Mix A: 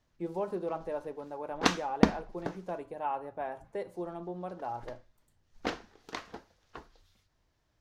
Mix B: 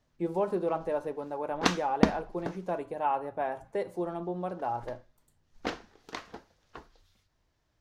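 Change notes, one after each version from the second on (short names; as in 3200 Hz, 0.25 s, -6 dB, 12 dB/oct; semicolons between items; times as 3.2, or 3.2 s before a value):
speech +5.0 dB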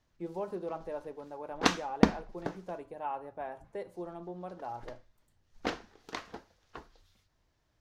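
speech -8.0 dB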